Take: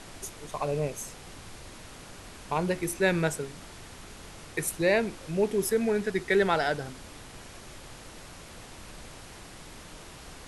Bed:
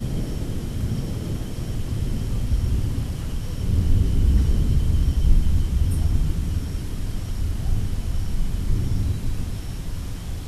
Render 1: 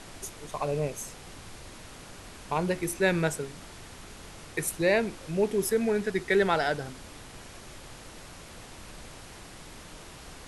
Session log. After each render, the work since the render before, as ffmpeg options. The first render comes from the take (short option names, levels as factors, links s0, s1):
-af anull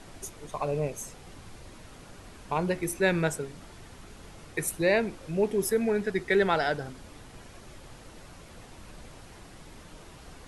-af "afftdn=nr=6:nf=-47"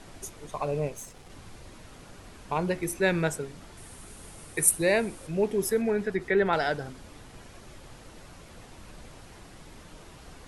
-filter_complex "[0:a]asettb=1/sr,asplit=3[s0][s1][s2];[s0]atrim=end=0.894[s3];[s1]atrim=start=0.89:end=1.3,asetpts=PTS-STARTPTS,afade=t=in:d=0.004:c=qsin,afade=t=out:st=0.406:d=0.004:c=qsin,aeval=exprs='if(lt(val(0),0),0.447*val(0),val(0))':c=same[s4];[s2]atrim=start=1.296[s5];[s3][s4]acrossfade=d=0.004:c1=hsin:c2=qsin[s6];[s6][s5]acrossfade=d=0.004:c1=qsin:c2=hsin,asettb=1/sr,asplit=3[s7][s8][s9];[s7]atrim=end=3.774[s10];[s8]atrim=start=3.77:end=5.27,asetpts=PTS-STARTPTS,afade=t=in:d=0.004:c=qsin,afade=t=out:st=1.496:d=0.004:c=qsin,equalizer=f=9500:t=o:w=0.57:g=14.5[s11];[s9]atrim=start=5.266[s12];[s10][s11]acrossfade=d=0.004:c1=hsin:c2=qsin[s13];[s13][s12]acrossfade=d=0.004:c1=qsin:c2=hsin,asettb=1/sr,asplit=3[s14][s15][s16];[s14]atrim=end=5.814[s17];[s15]atrim=start=5.81:end=6.53,asetpts=PTS-STARTPTS,afade=t=in:d=0.004:c=qsin,afade=t=out:st=0.716:d=0.004:c=qsin,acrossover=split=2700[s18][s19];[s19]acompressor=threshold=0.00251:ratio=4:attack=1:release=60[s20];[s18][s20]amix=inputs=2:normalize=0[s21];[s16]atrim=start=6.526[s22];[s17][s21]acrossfade=d=0.004:c1=hsin:c2=qsin[s23];[s23][s22]acrossfade=d=0.004:c1=qsin:c2=hsin"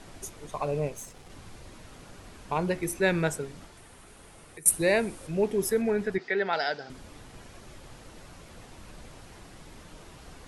-filter_complex "[0:a]asettb=1/sr,asplit=3[s0][s1][s2];[s0]atrim=end=3.654[s3];[s1]atrim=start=3.65:end=4.66,asetpts=PTS-STARTPTS,afade=t=in:d=0.004:c=qsin,afade=t=out:st=1.006:d=0.004:c=qsin,acrossover=split=340|4000[s4][s5][s6];[s4]acompressor=threshold=0.00224:ratio=4[s7];[s5]acompressor=threshold=0.00251:ratio=4[s8];[s6]acompressor=threshold=0.00126:ratio=4[s9];[s7][s8][s9]amix=inputs=3:normalize=0[s10];[s2]atrim=start=4.656[s11];[s3][s10]acrossfade=d=0.004:c1=hsin:c2=qsin[s12];[s12][s11]acrossfade=d=0.004:c1=qsin:c2=hsin,asettb=1/sr,asplit=3[s13][s14][s15];[s13]atrim=end=6.184[s16];[s14]atrim=start=6.18:end=6.9,asetpts=PTS-STARTPTS,afade=t=in:d=0.004:c=qsin,afade=t=out:st=0.716:d=0.004:c=qsin,highpass=310,equalizer=f=330:t=q:w=4:g=-8,equalizer=f=510:t=q:w=4:g=-5,equalizer=f=1100:t=q:w=4:g=-7,equalizer=f=4800:t=q:w=4:g=8,lowpass=f=5800:w=0.5412,lowpass=f=5800:w=1.3066[s17];[s15]atrim=start=6.896[s18];[s16][s17]acrossfade=d=0.004:c1=hsin:c2=qsin[s19];[s19][s18]acrossfade=d=0.004:c1=qsin:c2=hsin"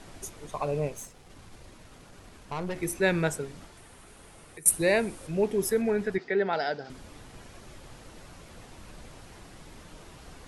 -filter_complex "[0:a]asettb=1/sr,asplit=3[s0][s1][s2];[s0]atrim=end=1.074[s3];[s1]atrim=start=1.07:end=2.76,asetpts=PTS-STARTPTS,afade=t=in:d=0.004:c=qsin,afade=t=out:st=1.686:d=0.004:c=qsin,aeval=exprs='(tanh(28.2*val(0)+0.6)-tanh(0.6))/28.2':c=same[s4];[s2]atrim=start=2.756[s5];[s3][s4]acrossfade=d=0.004:c1=hsin:c2=qsin[s6];[s6][s5]acrossfade=d=0.004:c1=qsin:c2=hsin,asettb=1/sr,asplit=3[s7][s8][s9];[s7]atrim=end=6.244[s10];[s8]atrim=start=6.24:end=6.85,asetpts=PTS-STARTPTS,afade=t=in:d=0.004:c=qsin,afade=t=out:st=0.606:d=0.004:c=qsin,tiltshelf=f=760:g=5[s11];[s9]atrim=start=6.846[s12];[s10][s11]acrossfade=d=0.004:c1=hsin:c2=qsin[s13];[s13][s12]acrossfade=d=0.004:c1=qsin:c2=hsin"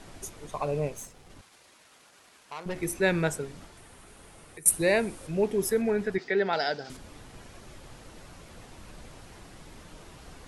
-filter_complex "[0:a]asettb=1/sr,asplit=3[s0][s1][s2];[s0]atrim=end=1.414[s3];[s1]atrim=start=1.41:end=2.66,asetpts=PTS-STARTPTS,afade=t=in:d=0.004:c=qsin,afade=t=out:st=1.246:d=0.004:c=qsin,highpass=f=1200:p=1[s4];[s2]atrim=start=2.656[s5];[s3][s4]acrossfade=d=0.004:c1=hsin:c2=qsin[s6];[s6][s5]acrossfade=d=0.004:c1=qsin:c2=hsin,asettb=1/sr,asplit=3[s7][s8][s9];[s7]atrim=end=6.184[s10];[s8]atrim=start=6.18:end=6.97,asetpts=PTS-STARTPTS,afade=t=in:d=0.004:c=qsin,afade=t=out:st=0.786:d=0.004:c=qsin,highshelf=f=3700:g=10.5[s11];[s9]atrim=start=6.966[s12];[s10][s11]acrossfade=d=0.004:c1=hsin:c2=qsin[s13];[s13][s12]acrossfade=d=0.004:c1=qsin:c2=hsin"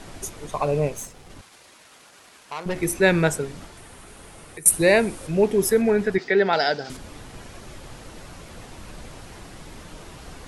-af "volume=2.24,alimiter=limit=0.794:level=0:latency=1"